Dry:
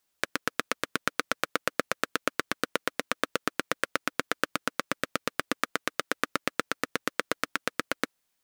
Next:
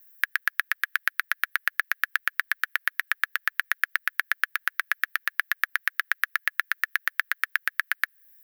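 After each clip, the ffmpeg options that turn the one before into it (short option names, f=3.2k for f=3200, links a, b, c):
-filter_complex "[0:a]highpass=f=1.7k:t=q:w=8.1,acrossover=split=3200|7200[a][b][c];[a]acompressor=threshold=-19dB:ratio=4[d];[b]acompressor=threshold=-38dB:ratio=4[e];[c]acompressor=threshold=-55dB:ratio=4[f];[d][e][f]amix=inputs=3:normalize=0,aexciter=amount=10.7:drive=8.3:freq=11k,volume=-1.5dB"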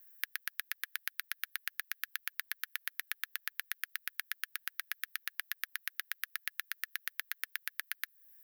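-filter_complex "[0:a]acrossover=split=190|3000[a][b][c];[b]acompressor=threshold=-39dB:ratio=6[d];[a][d][c]amix=inputs=3:normalize=0,volume=-4dB"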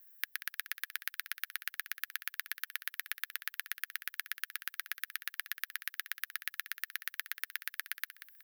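-af "aecho=1:1:185|370|555:0.237|0.0688|0.0199"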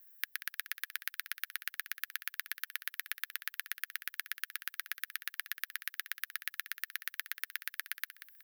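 -af "highpass=f=510:p=1"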